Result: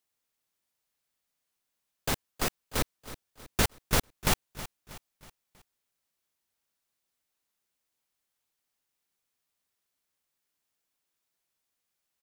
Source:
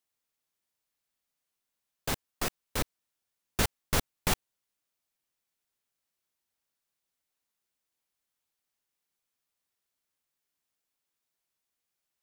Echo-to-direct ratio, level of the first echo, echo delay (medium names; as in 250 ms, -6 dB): -14.0 dB, -15.0 dB, 320 ms